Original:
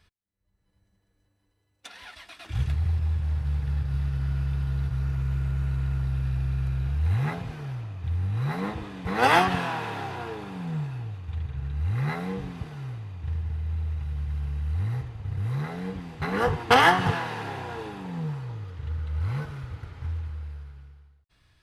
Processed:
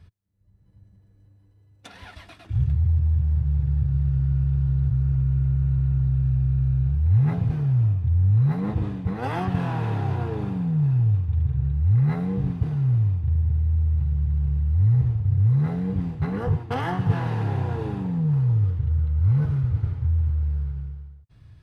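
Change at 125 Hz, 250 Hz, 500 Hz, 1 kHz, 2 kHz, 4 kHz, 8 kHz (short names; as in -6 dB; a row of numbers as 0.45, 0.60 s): +8.5 dB, +6.0 dB, -3.5 dB, -8.5 dB, -12.0 dB, under -10 dB, under -10 dB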